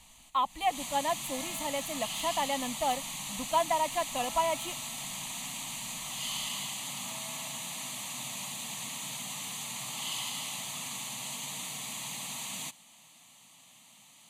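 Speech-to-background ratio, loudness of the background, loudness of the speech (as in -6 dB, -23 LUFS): 3.5 dB, -36.0 LUFS, -32.5 LUFS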